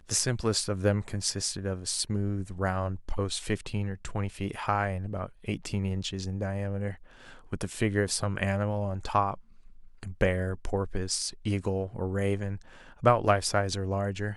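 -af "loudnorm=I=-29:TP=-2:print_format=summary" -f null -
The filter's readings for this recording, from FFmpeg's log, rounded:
Input Integrated:    -29.8 LUFS
Input True Peak:      -8.2 dBTP
Input LRA:             4.0 LU
Input Threshold:     -40.2 LUFS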